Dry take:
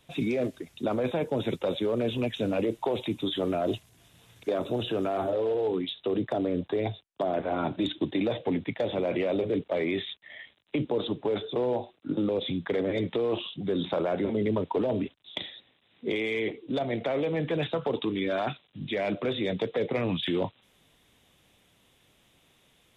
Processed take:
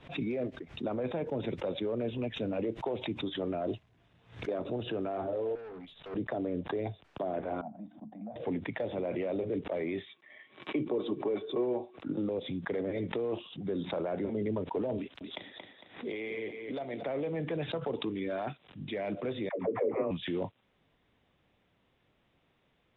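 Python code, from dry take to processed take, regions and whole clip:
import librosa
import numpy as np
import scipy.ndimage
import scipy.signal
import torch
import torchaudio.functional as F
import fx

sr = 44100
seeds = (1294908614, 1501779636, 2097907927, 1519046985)

y = fx.chain(x, sr, fx.peak_eq(hz=330.0, db=-10.5, octaves=0.44),
    fx.transient(attack_db=10, sustain_db=-3),
    fx.tube_stage(drive_db=37.0, bias=0.2), at=(5.55, 6.16))
y = fx.chain(y, sr, fx.double_bandpass(hz=390.0, octaves=1.7),
    fx.air_absorb(metres=150.0), at=(7.61, 8.36))
y = fx.chain(y, sr, fx.highpass(hz=130.0, slope=24),
    fx.notch_comb(f0_hz=170.0),
    fx.small_body(hz=(350.0, 1100.0, 2300.0), ring_ms=65, db=12), at=(10.07, 11.98))
y = fx.chain(y, sr, fx.low_shelf(hz=250.0, db=-9.0),
    fx.echo_feedback(ms=227, feedback_pct=22, wet_db=-9.0),
    fx.band_squash(depth_pct=70), at=(14.98, 17.03))
y = fx.chain(y, sr, fx.cabinet(low_hz=150.0, low_slope=12, high_hz=2100.0, hz=(170.0, 290.0, 410.0, 580.0, 1100.0, 1600.0), db=(-8, 5, 4, 5, 9, -8)),
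    fx.dispersion(late='lows', ms=108.0, hz=440.0), at=(19.49, 20.11))
y = scipy.signal.sosfilt(scipy.signal.butter(2, 2200.0, 'lowpass', fs=sr, output='sos'), y)
y = fx.dynamic_eq(y, sr, hz=1200.0, q=1.5, threshold_db=-43.0, ratio=4.0, max_db=-3)
y = fx.pre_swell(y, sr, db_per_s=140.0)
y = y * librosa.db_to_amplitude(-5.5)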